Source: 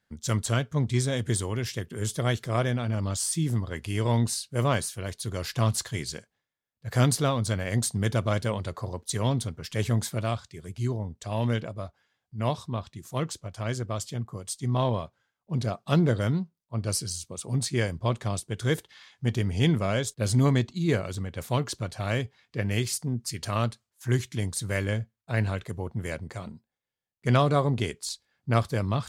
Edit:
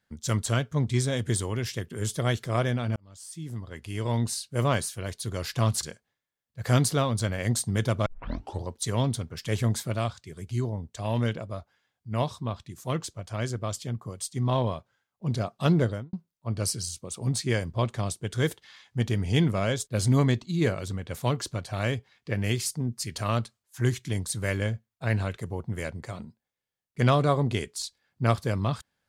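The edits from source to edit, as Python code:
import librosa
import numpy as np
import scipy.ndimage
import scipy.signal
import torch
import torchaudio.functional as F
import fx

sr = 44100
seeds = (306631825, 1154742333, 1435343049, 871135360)

y = fx.studio_fade_out(x, sr, start_s=16.07, length_s=0.33)
y = fx.edit(y, sr, fx.fade_in_span(start_s=2.96, length_s=1.64),
    fx.cut(start_s=5.83, length_s=0.27),
    fx.tape_start(start_s=8.33, length_s=0.59), tone=tone)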